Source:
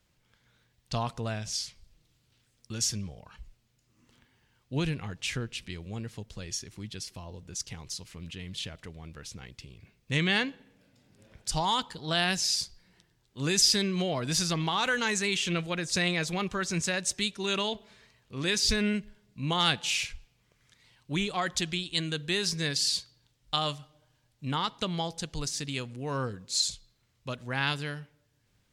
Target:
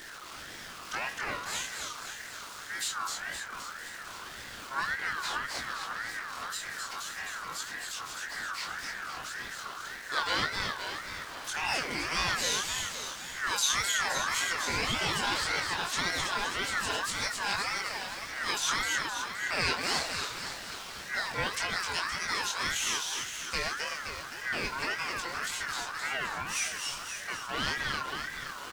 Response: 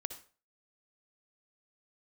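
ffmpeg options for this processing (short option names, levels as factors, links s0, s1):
-filter_complex "[0:a]aeval=exprs='val(0)+0.5*0.0211*sgn(val(0))':c=same,acrossover=split=7300[s0][s1];[s1]acompressor=threshold=0.00251:ratio=4:attack=1:release=60[s2];[s0][s2]amix=inputs=2:normalize=0,highshelf=f=6400:g=3.5,asplit=3[s3][s4][s5];[s4]asetrate=37084,aresample=44100,atempo=1.18921,volume=0.158[s6];[s5]asetrate=88200,aresample=44100,atempo=0.5,volume=0.2[s7];[s3][s6][s7]amix=inputs=3:normalize=0,flanger=delay=20:depth=2.9:speed=0.39,asplit=2[s8][s9];[s9]asplit=8[s10][s11][s12][s13][s14][s15][s16][s17];[s10]adelay=260,afreqshift=32,volume=0.631[s18];[s11]adelay=520,afreqshift=64,volume=0.359[s19];[s12]adelay=780,afreqshift=96,volume=0.204[s20];[s13]adelay=1040,afreqshift=128,volume=0.117[s21];[s14]adelay=1300,afreqshift=160,volume=0.0668[s22];[s15]adelay=1560,afreqshift=192,volume=0.038[s23];[s16]adelay=1820,afreqshift=224,volume=0.0216[s24];[s17]adelay=2080,afreqshift=256,volume=0.0123[s25];[s18][s19][s20][s21][s22][s23][s24][s25]amix=inputs=8:normalize=0[s26];[s8][s26]amix=inputs=2:normalize=0,aeval=exprs='val(0)*sin(2*PI*1500*n/s+1500*0.2/1.8*sin(2*PI*1.8*n/s))':c=same"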